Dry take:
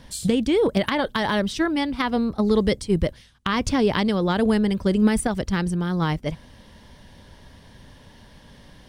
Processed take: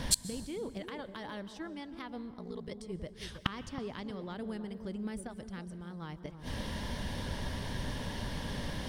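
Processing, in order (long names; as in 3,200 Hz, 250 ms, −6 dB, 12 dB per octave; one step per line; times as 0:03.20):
pitch vibrato 8.5 Hz 12 cents
gate with flip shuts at −22 dBFS, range −30 dB
delay with a low-pass on its return 320 ms, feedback 34%, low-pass 830 Hz, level −8.5 dB
0:02.31–0:02.71: ring modulation 29 Hz
dense smooth reverb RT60 1.6 s, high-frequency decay 0.8×, pre-delay 115 ms, DRR 16 dB
level +9.5 dB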